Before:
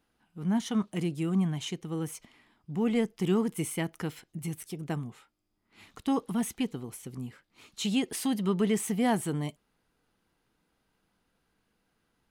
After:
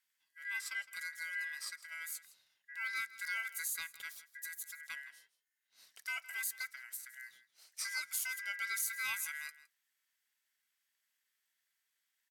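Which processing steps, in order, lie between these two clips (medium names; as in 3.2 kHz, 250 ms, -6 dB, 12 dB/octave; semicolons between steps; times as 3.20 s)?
ring modulator 1.8 kHz; pre-emphasis filter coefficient 0.97; echo from a far wall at 28 m, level -16 dB; on a send at -17 dB: reverberation RT60 0.20 s, pre-delay 3 ms; on the sum: trim +1.5 dB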